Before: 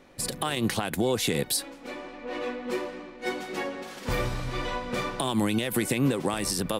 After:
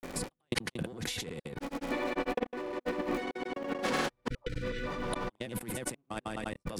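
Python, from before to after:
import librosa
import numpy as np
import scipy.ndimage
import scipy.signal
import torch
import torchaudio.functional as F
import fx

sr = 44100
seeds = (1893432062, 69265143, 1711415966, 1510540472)

p1 = fx.high_shelf(x, sr, hz=2700.0, db=-7.5)
p2 = fx.fold_sine(p1, sr, drive_db=8, ceiling_db=-12.5)
p3 = p1 + (p2 * librosa.db_to_amplitude(-9.0))
p4 = scipy.signal.sosfilt(scipy.signal.butter(4, 12000.0, 'lowpass', fs=sr, output='sos'), p3)
p5 = fx.dmg_crackle(p4, sr, seeds[0], per_s=220.0, level_db=-40.0)
p6 = fx.step_gate(p5, sr, bpm=103, pattern='xx..x.xxxx..x', floor_db=-60.0, edge_ms=4.5)
p7 = fx.spec_repair(p6, sr, seeds[1], start_s=4.37, length_s=0.63, low_hz=520.0, high_hz=1300.0, source='both')
p8 = fx.granulator(p7, sr, seeds[2], grain_ms=100.0, per_s=20.0, spray_ms=209.0, spread_st=0)
y = fx.over_compress(p8, sr, threshold_db=-36.0, ratio=-1.0)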